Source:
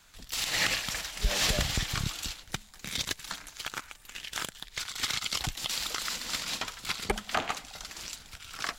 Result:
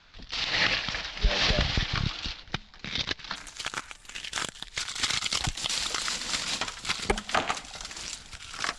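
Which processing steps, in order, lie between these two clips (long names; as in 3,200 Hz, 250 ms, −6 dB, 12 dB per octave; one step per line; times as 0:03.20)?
Butterworth low-pass 5,100 Hz 36 dB per octave, from 0:03.35 10,000 Hz
level +3.5 dB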